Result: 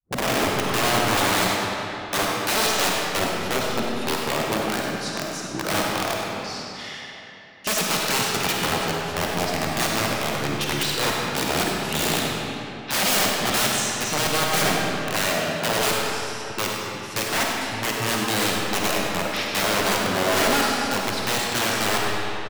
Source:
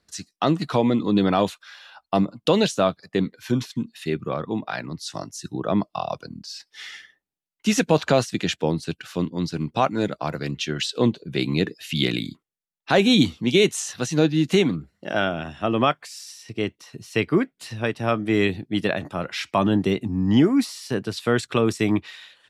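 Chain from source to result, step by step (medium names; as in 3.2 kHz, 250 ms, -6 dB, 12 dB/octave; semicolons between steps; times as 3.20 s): tape start-up on the opening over 0.82 s; integer overflow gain 18 dB; bass shelf 120 Hz -10 dB; on a send: feedback delay 99 ms, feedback 42%, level -12.5 dB; on the sum: algorithmic reverb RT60 3.2 s, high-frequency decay 0.7×, pre-delay 10 ms, DRR -2 dB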